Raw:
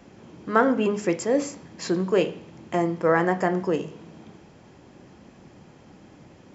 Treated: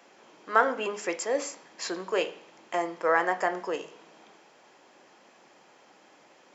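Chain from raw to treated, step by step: high-pass 620 Hz 12 dB/octave

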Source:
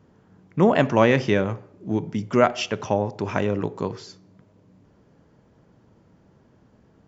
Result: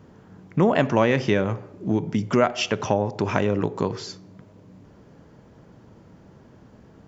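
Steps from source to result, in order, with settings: compression 2:1, threshold -29 dBFS, peak gain reduction 10 dB; trim +7 dB

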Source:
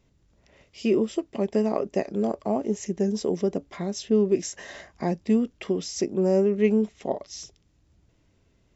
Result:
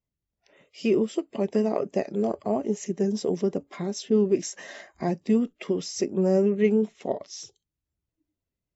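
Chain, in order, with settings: coarse spectral quantiser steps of 15 dB; spectral noise reduction 23 dB

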